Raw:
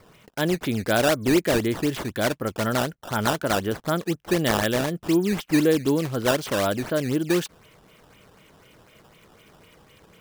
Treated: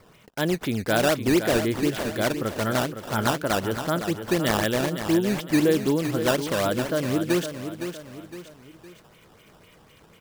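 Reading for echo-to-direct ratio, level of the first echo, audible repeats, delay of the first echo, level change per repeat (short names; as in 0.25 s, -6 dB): -8.0 dB, -9.0 dB, 3, 0.512 s, -7.5 dB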